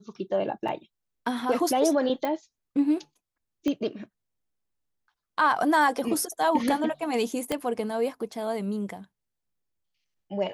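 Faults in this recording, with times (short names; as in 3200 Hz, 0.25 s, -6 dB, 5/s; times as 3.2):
0.68 gap 3.8 ms
2.25 pop -17 dBFS
3.68 pop -17 dBFS
7.52 pop -13 dBFS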